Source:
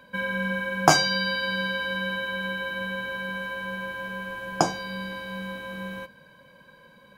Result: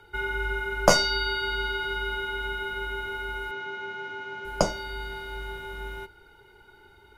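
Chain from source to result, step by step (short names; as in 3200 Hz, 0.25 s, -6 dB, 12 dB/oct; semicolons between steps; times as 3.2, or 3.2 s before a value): frequency shift -140 Hz; 3.51–4.45 Chebyshev band-pass 100–6400 Hz, order 4; gain -1 dB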